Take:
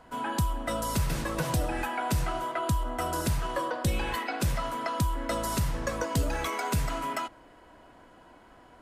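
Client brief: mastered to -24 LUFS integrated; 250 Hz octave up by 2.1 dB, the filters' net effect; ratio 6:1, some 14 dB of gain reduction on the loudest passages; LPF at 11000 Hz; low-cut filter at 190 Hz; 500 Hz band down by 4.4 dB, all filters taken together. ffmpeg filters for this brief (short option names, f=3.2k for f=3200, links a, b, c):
-af "highpass=190,lowpass=11k,equalizer=f=250:t=o:g=7,equalizer=f=500:t=o:g=-7.5,acompressor=threshold=-40dB:ratio=6,volume=19dB"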